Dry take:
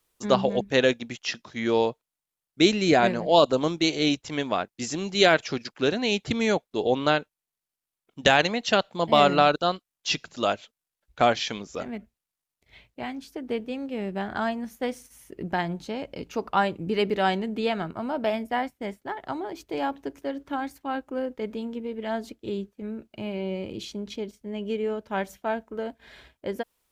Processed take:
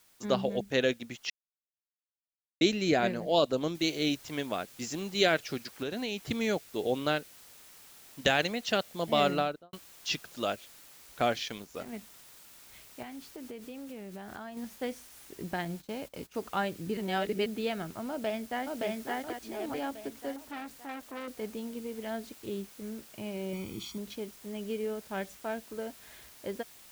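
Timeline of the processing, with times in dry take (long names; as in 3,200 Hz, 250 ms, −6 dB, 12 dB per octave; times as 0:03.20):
0:01.30–0:02.61: silence
0:03.75: noise floor change −58 dB −48 dB
0:05.69–0:06.27: downward compressor, threshold −24 dBFS
0:09.28–0:09.73: fade out and dull
0:11.40–0:11.93: mu-law and A-law mismatch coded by A
0:13.02–0:14.57: downward compressor, threshold −33 dBFS
0:15.65–0:16.35: noise gate −42 dBFS, range −17 dB
0:16.97–0:17.46: reverse
0:18.09–0:18.65: delay throw 570 ms, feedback 45%, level −1 dB
0:19.30–0:19.74: reverse
0:20.36–0:21.28: saturating transformer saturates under 1,700 Hz
0:23.53–0:23.98: comb filter 0.9 ms
whole clip: dynamic equaliser 960 Hz, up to −6 dB, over −39 dBFS, Q 2.2; level −6 dB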